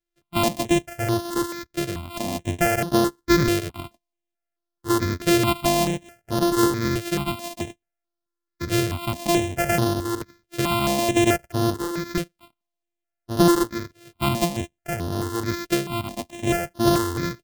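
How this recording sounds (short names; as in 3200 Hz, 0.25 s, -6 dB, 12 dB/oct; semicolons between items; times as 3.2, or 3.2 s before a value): a buzz of ramps at a fixed pitch in blocks of 128 samples; notches that jump at a steady rate 4.6 Hz 240–7700 Hz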